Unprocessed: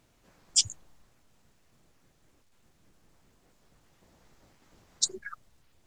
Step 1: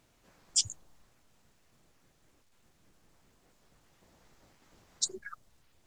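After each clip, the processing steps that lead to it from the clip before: dynamic EQ 2100 Hz, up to -4 dB, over -52 dBFS, Q 0.84; in parallel at +0.5 dB: limiter -18.5 dBFS, peak gain reduction 10 dB; on the sum: low shelf 420 Hz -2.5 dB; gain -6.5 dB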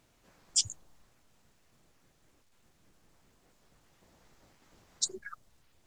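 nothing audible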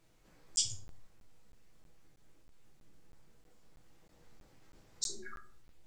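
shoebox room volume 41 m³, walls mixed, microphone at 0.67 m; crackling interface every 0.32 s, samples 512, zero, from 0.56; gain -6 dB

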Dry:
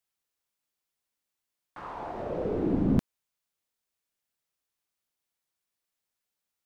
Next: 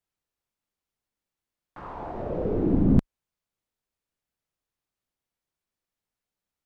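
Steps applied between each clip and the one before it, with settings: tilt -2 dB/oct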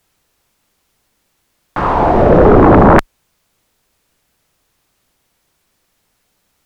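sine folder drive 17 dB, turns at -7 dBFS; gain +4.5 dB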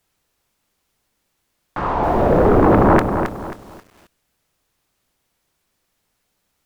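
lo-fi delay 0.269 s, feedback 35%, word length 6-bit, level -7 dB; gain -7 dB

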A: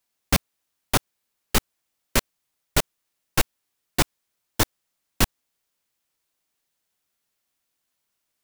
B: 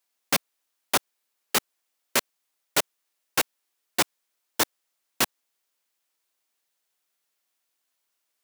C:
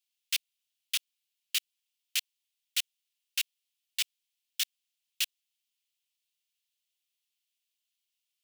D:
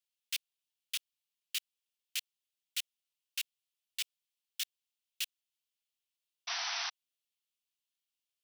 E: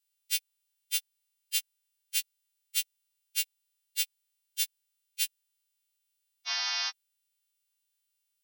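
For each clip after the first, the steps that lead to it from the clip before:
Bessel high-pass 380 Hz, order 2
ladder high-pass 2500 Hz, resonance 50%; gain +1.5 dB
painted sound noise, 6.47–6.9, 660–6100 Hz -30 dBFS; gain -6.5 dB
frequency quantiser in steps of 2 st; gain -1.5 dB

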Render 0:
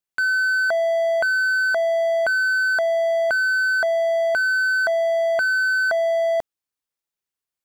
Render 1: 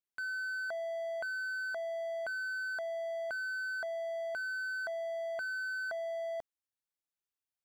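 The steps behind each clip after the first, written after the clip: limiter -23.5 dBFS, peak gain reduction 8.5 dB; gain -9 dB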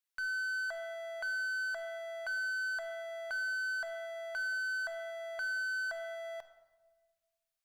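HPF 1000 Hz 12 dB/oct; in parallel at -6 dB: one-sided clip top -54.5 dBFS, bottom -40 dBFS; on the sum: shoebox room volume 1100 m³, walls mixed, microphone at 0.67 m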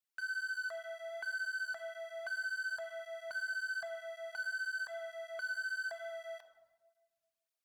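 tape flanging out of phase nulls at 1.8 Hz, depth 2.7 ms

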